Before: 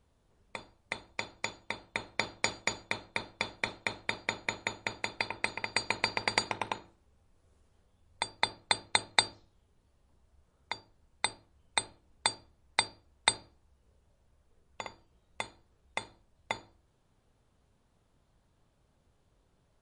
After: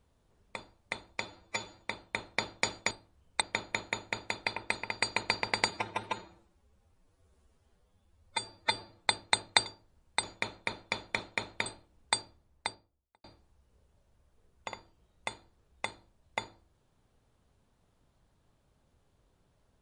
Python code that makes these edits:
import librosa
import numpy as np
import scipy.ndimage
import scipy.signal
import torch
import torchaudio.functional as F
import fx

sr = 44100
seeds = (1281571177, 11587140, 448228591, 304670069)

y = fx.studio_fade_out(x, sr, start_s=12.34, length_s=1.03)
y = fx.edit(y, sr, fx.stretch_span(start_s=1.23, length_s=0.38, factor=1.5),
    fx.swap(start_s=2.72, length_s=1.43, other_s=11.29, other_length_s=0.5),
    fx.stretch_span(start_s=6.44, length_s=2.24, factor=1.5),
    fx.cut(start_s=9.28, length_s=1.44), tone=tone)